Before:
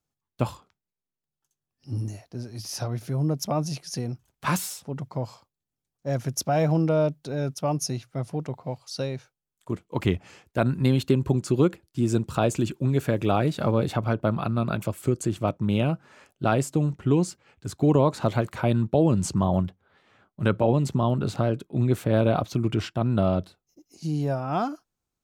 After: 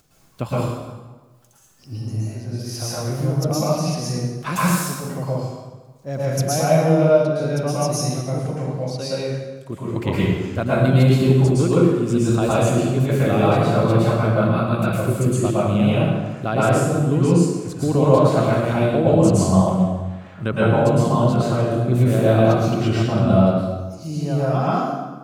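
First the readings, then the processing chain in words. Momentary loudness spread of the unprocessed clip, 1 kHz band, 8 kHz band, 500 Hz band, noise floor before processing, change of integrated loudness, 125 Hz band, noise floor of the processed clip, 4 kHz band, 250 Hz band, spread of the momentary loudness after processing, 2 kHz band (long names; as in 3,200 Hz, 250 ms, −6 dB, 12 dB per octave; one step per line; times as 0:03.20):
11 LU, +7.0 dB, +6.5 dB, +8.0 dB, below −85 dBFS, +7.0 dB, +7.0 dB, −46 dBFS, +6.0 dB, +6.5 dB, 12 LU, +7.5 dB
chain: notch filter 890 Hz, Q 12
upward compression, threshold −41 dBFS
dense smooth reverb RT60 1.3 s, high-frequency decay 0.75×, pre-delay 100 ms, DRR −8.5 dB
level −1.5 dB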